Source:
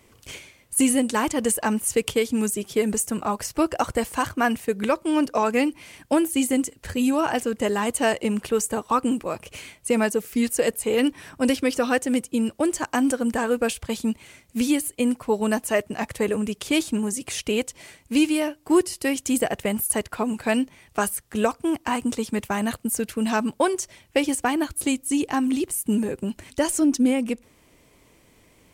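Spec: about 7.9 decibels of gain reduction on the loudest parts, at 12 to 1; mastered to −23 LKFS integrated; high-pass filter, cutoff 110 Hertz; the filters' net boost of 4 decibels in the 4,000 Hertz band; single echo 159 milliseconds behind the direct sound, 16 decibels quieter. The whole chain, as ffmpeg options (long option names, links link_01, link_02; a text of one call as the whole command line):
ffmpeg -i in.wav -af "highpass=110,equalizer=frequency=4000:width_type=o:gain=6,acompressor=threshold=-23dB:ratio=12,aecho=1:1:159:0.158,volume=5.5dB" out.wav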